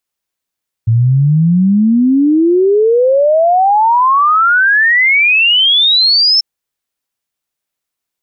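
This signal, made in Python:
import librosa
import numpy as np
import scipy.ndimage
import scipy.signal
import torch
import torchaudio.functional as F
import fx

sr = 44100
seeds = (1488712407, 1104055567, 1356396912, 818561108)

y = fx.ess(sr, length_s=5.54, from_hz=110.0, to_hz=5400.0, level_db=-6.5)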